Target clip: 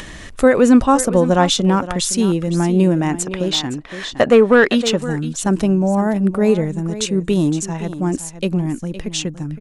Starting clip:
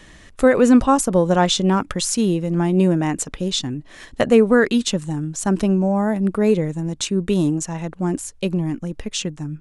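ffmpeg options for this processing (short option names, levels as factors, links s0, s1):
-filter_complex "[0:a]aecho=1:1:514:0.211,acompressor=mode=upward:threshold=0.0447:ratio=2.5,asettb=1/sr,asplit=3[s0][s1][s2];[s0]atrim=end=3.254[s3];[s1]atrim=start=3.25:end=5.02,asetpts=PTS-STARTPTS,afade=t=in:d=0.004:c=qsin,afade=t=out:st=1.766:d=0.004:c=qsin,asplit=2[s4][s5];[s5]highpass=f=720:p=1,volume=4.47,asoftclip=type=tanh:threshold=0.75[s6];[s4][s6]amix=inputs=2:normalize=0,lowpass=f=2400:p=1,volume=0.501[s7];[s2]atrim=start=5.016[s8];[s3][s7]acrossfade=d=0.004:c1=hsin:c2=qsin[s9];[s9][s8]acrossfade=d=0.004:c1=qsin:c2=hsin,volume=1.26"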